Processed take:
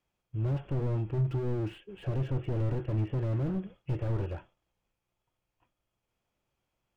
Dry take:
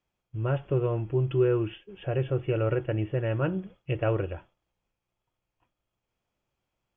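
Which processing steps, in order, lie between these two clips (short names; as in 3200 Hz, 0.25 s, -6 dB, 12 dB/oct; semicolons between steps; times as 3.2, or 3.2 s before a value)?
treble ducked by the level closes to 2700 Hz, closed at -21 dBFS; slew limiter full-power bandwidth 8.3 Hz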